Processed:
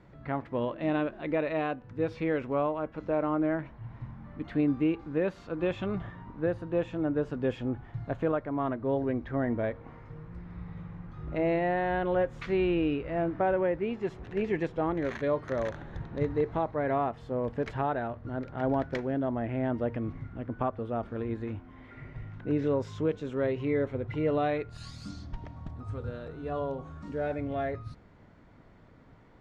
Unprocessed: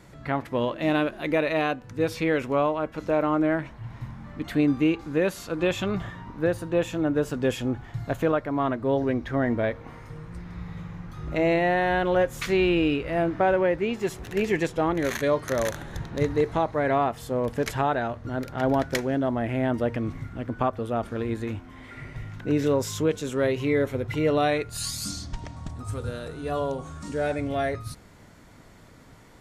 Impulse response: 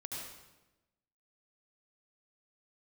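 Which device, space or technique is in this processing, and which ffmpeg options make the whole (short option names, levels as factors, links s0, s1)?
phone in a pocket: -af "lowpass=3900,highshelf=f=2200:g=-9,volume=0.596"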